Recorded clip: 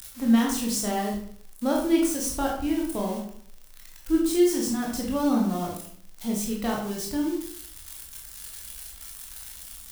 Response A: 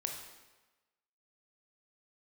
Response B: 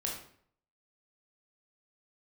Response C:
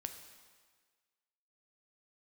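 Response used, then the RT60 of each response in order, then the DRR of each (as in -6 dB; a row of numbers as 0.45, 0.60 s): B; 1.2, 0.60, 1.6 s; 2.0, -2.0, 6.5 dB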